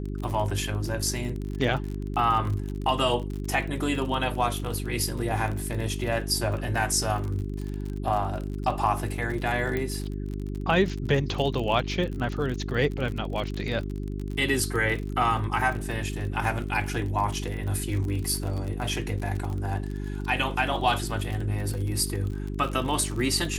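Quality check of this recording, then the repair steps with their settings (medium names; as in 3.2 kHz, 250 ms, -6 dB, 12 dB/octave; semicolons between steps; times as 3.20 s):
crackle 40 per s -31 dBFS
hum 50 Hz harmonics 8 -32 dBFS
9.77 s: pop -17 dBFS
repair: de-click; de-hum 50 Hz, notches 8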